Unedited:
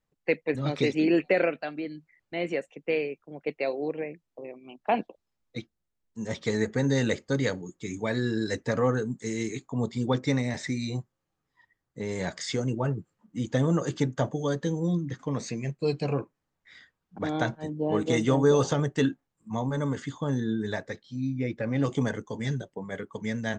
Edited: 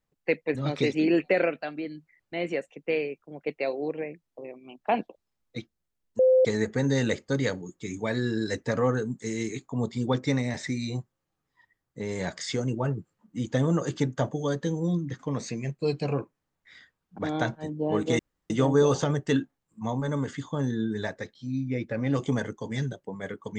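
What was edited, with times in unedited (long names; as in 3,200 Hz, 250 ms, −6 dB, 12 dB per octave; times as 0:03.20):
0:06.19–0:06.45: beep over 516 Hz −15.5 dBFS
0:18.19: splice in room tone 0.31 s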